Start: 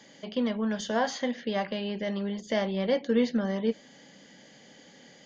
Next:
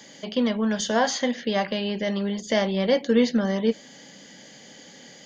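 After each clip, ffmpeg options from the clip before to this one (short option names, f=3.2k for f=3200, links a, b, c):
-af "highshelf=f=5.5k:g=9.5,volume=5dB"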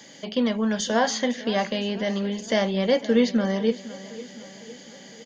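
-af "aecho=1:1:507|1014|1521|2028|2535:0.141|0.0805|0.0459|0.0262|0.0149"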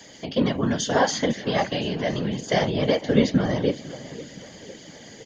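-af "afftfilt=real='hypot(re,im)*cos(2*PI*random(0))':imag='hypot(re,im)*sin(2*PI*random(1))':win_size=512:overlap=0.75,volume=6.5dB"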